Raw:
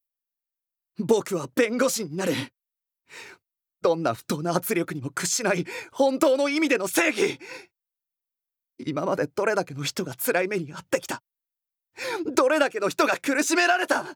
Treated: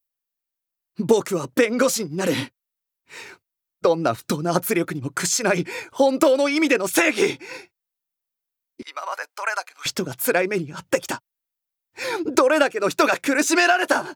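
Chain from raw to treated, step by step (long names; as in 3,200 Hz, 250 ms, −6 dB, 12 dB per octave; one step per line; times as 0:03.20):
0:08.82–0:09.86: high-pass filter 860 Hz 24 dB per octave
level +3.5 dB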